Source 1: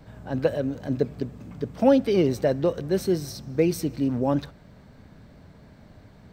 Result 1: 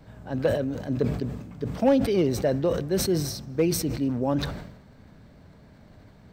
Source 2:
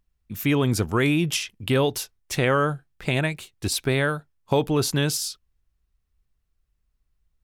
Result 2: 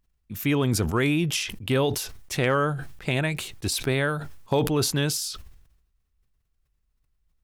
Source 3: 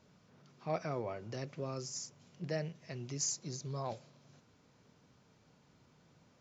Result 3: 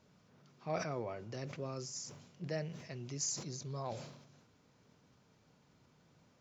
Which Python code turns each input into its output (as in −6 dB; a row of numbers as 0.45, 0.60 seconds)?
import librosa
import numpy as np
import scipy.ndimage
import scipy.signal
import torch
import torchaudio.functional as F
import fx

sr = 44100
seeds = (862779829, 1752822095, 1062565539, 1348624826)

y = np.clip(x, -10.0 ** (-11.5 / 20.0), 10.0 ** (-11.5 / 20.0))
y = fx.sustainer(y, sr, db_per_s=62.0)
y = y * librosa.db_to_amplitude(-2.0)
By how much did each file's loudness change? −1.0, −1.5, −1.5 LU